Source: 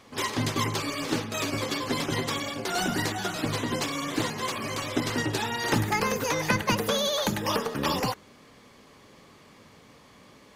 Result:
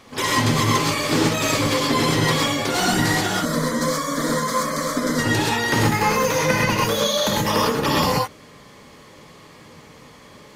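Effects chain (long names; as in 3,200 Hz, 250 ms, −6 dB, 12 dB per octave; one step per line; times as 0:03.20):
speech leveller 0.5 s
0:03.32–0:05.19: phaser with its sweep stopped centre 540 Hz, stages 8
reverb whose tail is shaped and stops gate 150 ms rising, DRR −3.5 dB
level +3.5 dB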